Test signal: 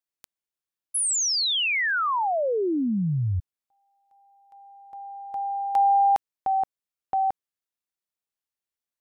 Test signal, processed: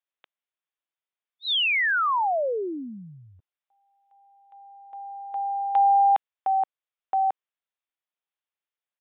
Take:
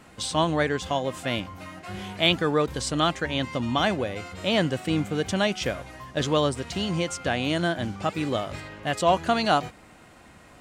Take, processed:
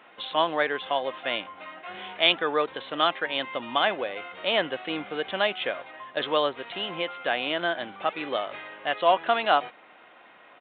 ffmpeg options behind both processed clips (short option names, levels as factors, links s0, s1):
-af "highpass=510,aresample=8000,aresample=44100,volume=1.19"